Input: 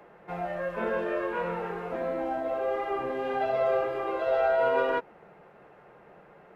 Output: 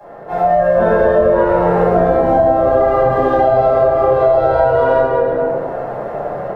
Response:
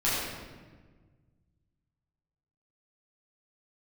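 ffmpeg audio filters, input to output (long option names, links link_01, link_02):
-filter_complex "[0:a]equalizer=frequency=100:width_type=o:width=0.67:gain=5,equalizer=frequency=630:width_type=o:width=0.67:gain=10,equalizer=frequency=2500:width_type=o:width=0.67:gain=-11,dynaudnorm=framelen=380:gausssize=3:maxgain=10dB[link_01];[1:a]atrim=start_sample=2205[link_02];[link_01][link_02]afir=irnorm=-1:irlink=0,acrossover=split=150[link_03][link_04];[link_04]acompressor=threshold=-14dB:ratio=6[link_05];[link_03][link_05]amix=inputs=2:normalize=0,volume=3.5dB"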